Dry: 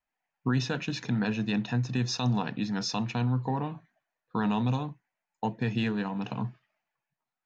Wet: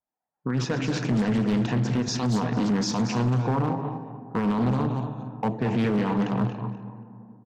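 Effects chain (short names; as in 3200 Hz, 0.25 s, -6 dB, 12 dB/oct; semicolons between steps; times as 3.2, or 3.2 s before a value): regenerating reverse delay 0.139 s, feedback 46%, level -12 dB; digital reverb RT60 3.7 s, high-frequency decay 0.4×, pre-delay 0 ms, DRR 16 dB; limiter -24.5 dBFS, peak gain reduction 9.5 dB; AGC gain up to 11.5 dB; low-pass opened by the level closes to 1100 Hz, open at -18 dBFS; HPF 130 Hz 6 dB/oct; bell 3300 Hz -10.5 dB 1.9 oct; echo 0.229 s -9.5 dB; hard clip -18.5 dBFS, distortion -17 dB; Doppler distortion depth 0.33 ms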